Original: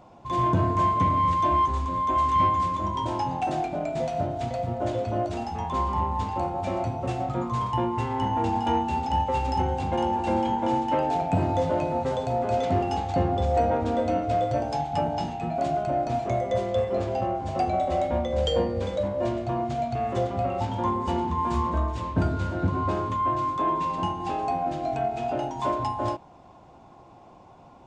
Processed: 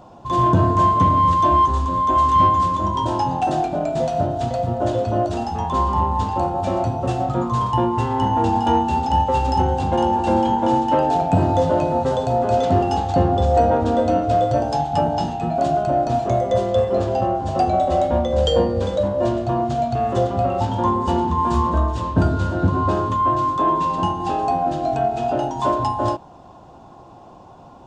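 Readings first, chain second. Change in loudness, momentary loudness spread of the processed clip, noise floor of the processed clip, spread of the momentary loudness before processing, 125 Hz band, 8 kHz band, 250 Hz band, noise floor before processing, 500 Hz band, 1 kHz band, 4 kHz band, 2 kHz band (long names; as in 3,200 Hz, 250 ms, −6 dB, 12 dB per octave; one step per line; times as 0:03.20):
+7.0 dB, 6 LU, −43 dBFS, 6 LU, +7.0 dB, can't be measured, +7.0 dB, −50 dBFS, +7.0 dB, +7.0 dB, +6.0 dB, +4.0 dB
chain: parametric band 2,200 Hz −10 dB 0.36 octaves
level +7 dB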